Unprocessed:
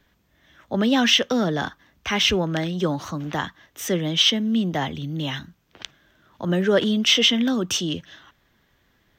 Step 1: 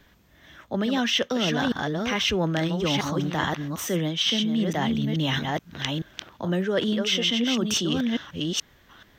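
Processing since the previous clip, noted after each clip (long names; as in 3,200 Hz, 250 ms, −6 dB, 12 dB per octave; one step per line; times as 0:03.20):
delay that plays each chunk backwards 430 ms, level −7 dB
reversed playback
downward compressor 6 to 1, threshold −28 dBFS, peak gain reduction 14.5 dB
reversed playback
level +6 dB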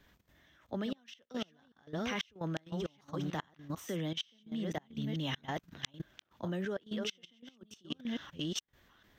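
gate with flip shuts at −15 dBFS, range −27 dB
output level in coarse steps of 15 dB
level −5.5 dB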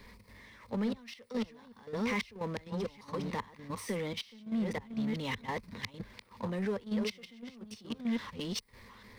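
EQ curve with evenly spaced ripples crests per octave 0.91, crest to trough 13 dB
power curve on the samples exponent 0.7
level −3.5 dB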